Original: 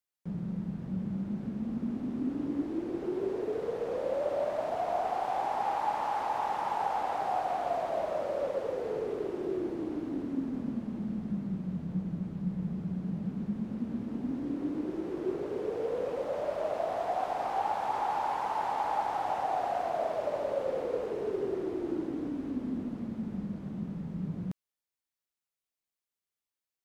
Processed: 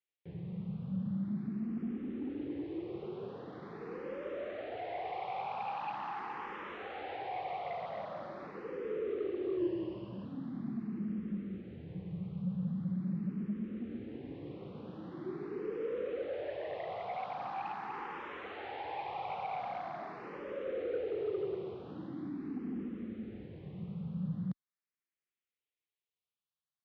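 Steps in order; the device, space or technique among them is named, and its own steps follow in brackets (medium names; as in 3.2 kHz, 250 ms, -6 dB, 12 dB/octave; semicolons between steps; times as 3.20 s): barber-pole phaser into a guitar amplifier (barber-pole phaser +0.43 Hz; saturation -27 dBFS, distortion -18 dB; cabinet simulation 90–3700 Hz, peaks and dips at 260 Hz -7 dB, 640 Hz -10 dB, 910 Hz -8 dB, 1.5 kHz -4 dB); 9.59–10.25 s: rippled EQ curve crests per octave 1.3, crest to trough 13 dB; trim +2 dB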